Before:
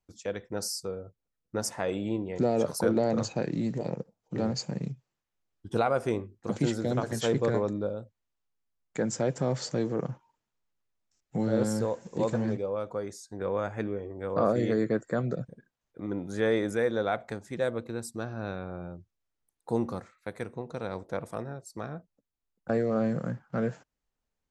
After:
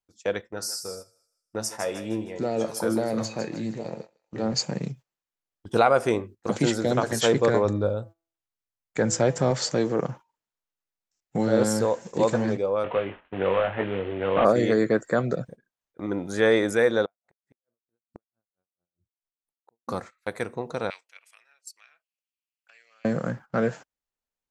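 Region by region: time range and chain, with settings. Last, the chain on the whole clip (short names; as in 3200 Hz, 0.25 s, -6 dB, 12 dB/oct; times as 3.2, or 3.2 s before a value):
0.41–4.53 resonator 110 Hz, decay 0.28 s, mix 70% + thinning echo 0.155 s, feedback 40%, high-pass 1100 Hz, level -8.5 dB
7.64–9.51 bell 100 Hz +10.5 dB 0.55 oct + de-hum 165.7 Hz, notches 12
12.84–14.45 CVSD 16 kbps + doubler 21 ms -5 dB + three-band squash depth 40%
17.05–19.88 high shelf 2200 Hz -11.5 dB + flipped gate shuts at -29 dBFS, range -36 dB + dB-linear tremolo 4.5 Hz, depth 39 dB
20.9–23.05 notch 3700 Hz, Q 8.6 + compressor 3:1, threshold -31 dBFS + resonant high-pass 2600 Hz, resonance Q 3.8
whole clip: gate -45 dBFS, range -14 dB; low shelf 310 Hz -8.5 dB; gain +9 dB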